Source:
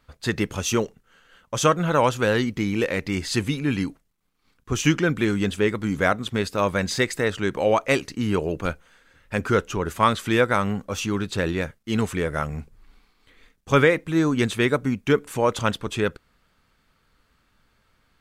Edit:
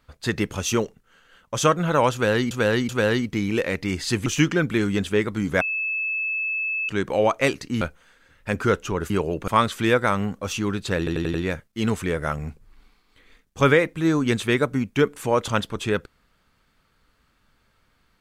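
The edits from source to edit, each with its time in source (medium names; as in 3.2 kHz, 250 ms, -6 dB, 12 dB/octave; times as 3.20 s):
2.13–2.51 s: loop, 3 plays
3.50–4.73 s: delete
6.08–7.36 s: bleep 2.61 kHz -23 dBFS
8.28–8.66 s: move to 9.95 s
11.45 s: stutter 0.09 s, 5 plays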